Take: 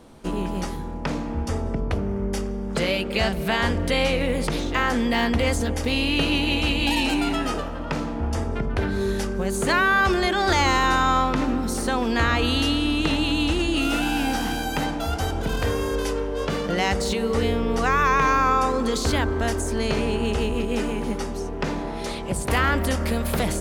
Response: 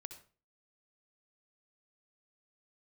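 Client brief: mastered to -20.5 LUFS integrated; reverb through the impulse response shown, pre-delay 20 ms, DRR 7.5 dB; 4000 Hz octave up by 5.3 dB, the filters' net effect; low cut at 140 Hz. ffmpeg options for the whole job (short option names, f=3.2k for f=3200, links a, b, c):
-filter_complex "[0:a]highpass=140,equalizer=f=4k:t=o:g=7,asplit=2[a][b];[1:a]atrim=start_sample=2205,adelay=20[c];[b][c]afir=irnorm=-1:irlink=0,volume=-2.5dB[d];[a][d]amix=inputs=2:normalize=0,volume=1dB"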